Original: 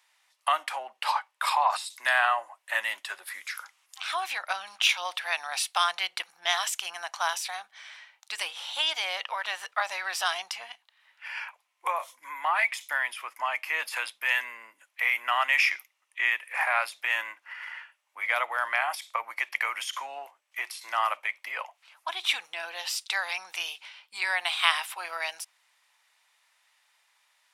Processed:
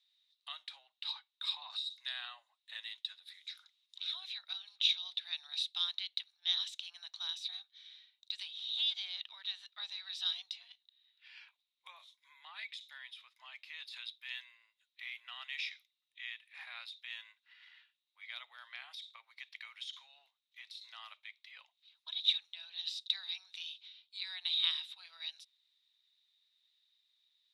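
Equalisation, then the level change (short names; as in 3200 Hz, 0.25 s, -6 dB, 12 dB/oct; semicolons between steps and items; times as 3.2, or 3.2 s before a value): band-pass 3800 Hz, Q 17; +6.0 dB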